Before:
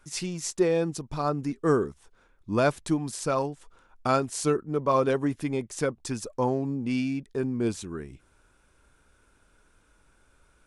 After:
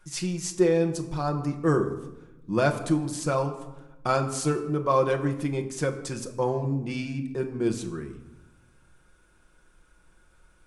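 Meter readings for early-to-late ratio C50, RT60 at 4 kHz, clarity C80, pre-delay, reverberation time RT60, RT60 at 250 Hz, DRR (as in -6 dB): 11.0 dB, 0.60 s, 13.0 dB, 6 ms, 1.0 s, 1.5 s, 4.0 dB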